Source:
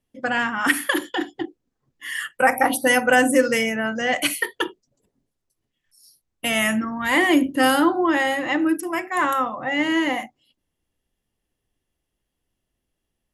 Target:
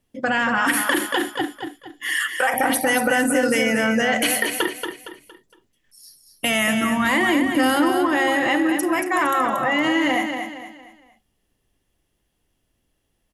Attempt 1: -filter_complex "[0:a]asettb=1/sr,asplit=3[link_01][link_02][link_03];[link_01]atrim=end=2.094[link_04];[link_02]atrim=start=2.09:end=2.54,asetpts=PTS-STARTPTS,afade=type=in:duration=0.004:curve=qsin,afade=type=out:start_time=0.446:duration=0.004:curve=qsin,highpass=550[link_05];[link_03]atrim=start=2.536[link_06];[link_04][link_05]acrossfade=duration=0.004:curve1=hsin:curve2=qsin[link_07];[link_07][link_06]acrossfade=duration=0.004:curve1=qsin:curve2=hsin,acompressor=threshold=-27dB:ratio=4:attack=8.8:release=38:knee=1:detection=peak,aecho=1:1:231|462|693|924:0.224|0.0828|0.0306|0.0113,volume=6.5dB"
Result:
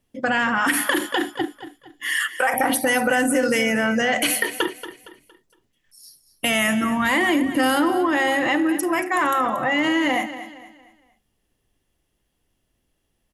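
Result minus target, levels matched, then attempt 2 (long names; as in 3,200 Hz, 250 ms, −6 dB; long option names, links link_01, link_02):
echo-to-direct −6.5 dB
-filter_complex "[0:a]asettb=1/sr,asplit=3[link_01][link_02][link_03];[link_01]atrim=end=2.094[link_04];[link_02]atrim=start=2.09:end=2.54,asetpts=PTS-STARTPTS,afade=type=in:duration=0.004:curve=qsin,afade=type=out:start_time=0.446:duration=0.004:curve=qsin,highpass=550[link_05];[link_03]atrim=start=2.536[link_06];[link_04][link_05]acrossfade=duration=0.004:curve1=hsin:curve2=qsin[link_07];[link_07][link_06]acrossfade=duration=0.004:curve1=qsin:curve2=hsin,acompressor=threshold=-27dB:ratio=4:attack=8.8:release=38:knee=1:detection=peak,aecho=1:1:231|462|693|924:0.473|0.175|0.0648|0.024,volume=6.5dB"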